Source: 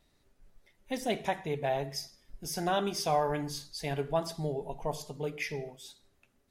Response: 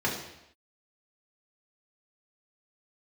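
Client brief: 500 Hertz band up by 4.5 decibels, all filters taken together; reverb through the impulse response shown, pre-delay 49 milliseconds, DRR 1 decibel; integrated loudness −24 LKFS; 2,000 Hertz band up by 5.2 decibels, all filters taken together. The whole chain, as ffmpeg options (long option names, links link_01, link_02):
-filter_complex "[0:a]equalizer=frequency=500:width_type=o:gain=5.5,equalizer=frequency=2000:width_type=o:gain=6,asplit=2[link_01][link_02];[1:a]atrim=start_sample=2205,adelay=49[link_03];[link_02][link_03]afir=irnorm=-1:irlink=0,volume=-11.5dB[link_04];[link_01][link_04]amix=inputs=2:normalize=0,volume=3dB"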